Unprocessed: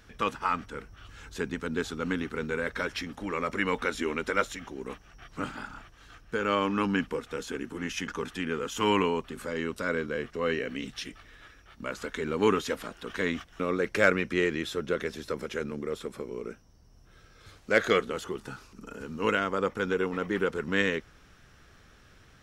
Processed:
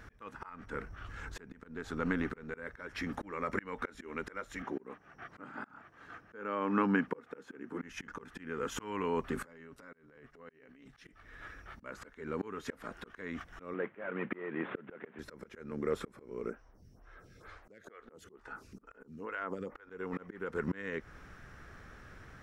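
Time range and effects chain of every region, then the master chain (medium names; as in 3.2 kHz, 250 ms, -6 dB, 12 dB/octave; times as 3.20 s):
0.49–2.54 s: partial rectifier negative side -3 dB + treble shelf 8.5 kHz -4.5 dB + compression 2:1, threshold -34 dBFS
4.62–7.83 s: high-pass 170 Hz + treble shelf 3.3 kHz -10.5 dB
9.42–10.97 s: comb 7.2 ms, depth 36% + transient shaper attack -9 dB, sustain +11 dB + inverted gate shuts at -33 dBFS, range -25 dB
13.74–15.19 s: CVSD coder 16 kbps + high-pass 150 Hz 24 dB/octave
16.50–19.90 s: compression 8:1, threshold -35 dBFS + lamp-driven phase shifter 2.2 Hz
whole clip: resonant high shelf 2.4 kHz -7 dB, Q 1.5; compression 5:1, threshold -29 dBFS; slow attack 444 ms; trim +4 dB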